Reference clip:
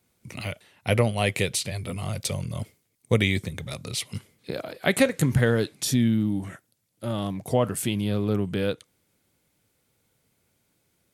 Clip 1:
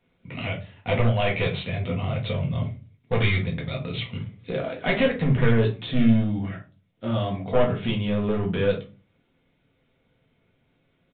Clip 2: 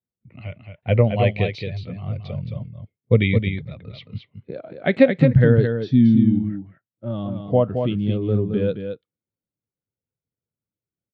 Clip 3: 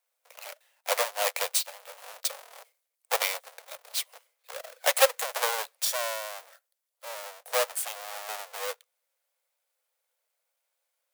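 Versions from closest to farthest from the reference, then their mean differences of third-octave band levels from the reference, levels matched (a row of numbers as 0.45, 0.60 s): 1, 2, 3; 9.0, 11.5, 18.0 dB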